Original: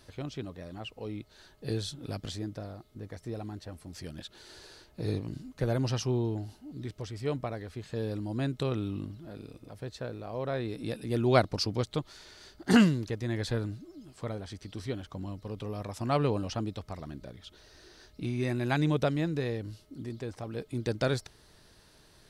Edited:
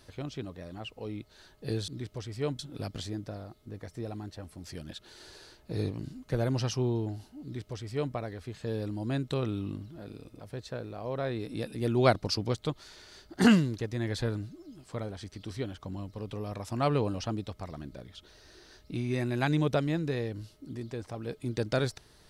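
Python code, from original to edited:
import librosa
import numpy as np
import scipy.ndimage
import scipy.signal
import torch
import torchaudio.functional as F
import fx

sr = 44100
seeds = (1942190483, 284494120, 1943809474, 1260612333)

y = fx.edit(x, sr, fx.duplicate(start_s=6.72, length_s=0.71, to_s=1.88), tone=tone)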